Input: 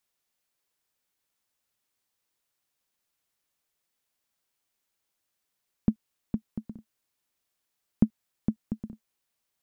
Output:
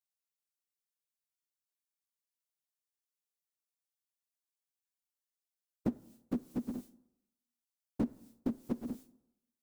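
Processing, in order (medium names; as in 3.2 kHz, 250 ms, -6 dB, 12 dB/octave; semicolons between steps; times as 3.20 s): frequency-domain pitch shifter +1.5 st; expander -53 dBFS; tone controls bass -11 dB, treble +8 dB; compression 6:1, threshold -48 dBFS, peak gain reduction 18.5 dB; on a send: reverberation RT60 0.90 s, pre-delay 22 ms, DRR 18 dB; on the sum: trim +16.5 dB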